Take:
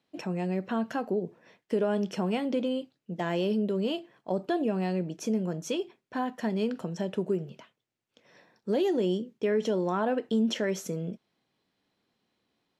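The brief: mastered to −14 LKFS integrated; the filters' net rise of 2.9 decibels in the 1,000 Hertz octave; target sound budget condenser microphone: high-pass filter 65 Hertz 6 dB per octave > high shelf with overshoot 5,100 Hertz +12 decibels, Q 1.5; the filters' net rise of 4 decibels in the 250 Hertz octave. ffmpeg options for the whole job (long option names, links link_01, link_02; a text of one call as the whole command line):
ffmpeg -i in.wav -af "highpass=frequency=65:poles=1,equalizer=frequency=250:width_type=o:gain=5.5,equalizer=frequency=1000:width_type=o:gain=4,highshelf=frequency=5100:width_type=q:width=1.5:gain=12,volume=13dB" out.wav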